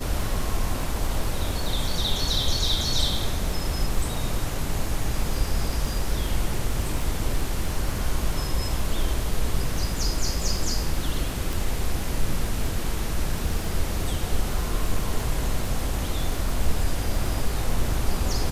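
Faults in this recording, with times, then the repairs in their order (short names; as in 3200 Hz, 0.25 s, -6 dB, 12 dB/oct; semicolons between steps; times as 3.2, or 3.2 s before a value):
crackle 30/s -29 dBFS
11.53 pop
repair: de-click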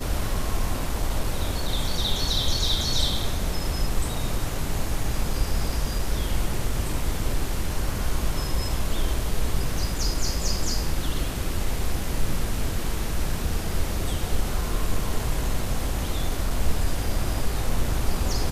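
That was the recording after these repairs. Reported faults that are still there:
none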